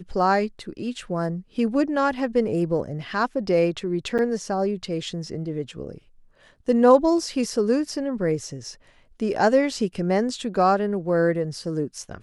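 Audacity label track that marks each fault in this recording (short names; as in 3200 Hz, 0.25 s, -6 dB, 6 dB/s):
4.180000	4.190000	gap 7.7 ms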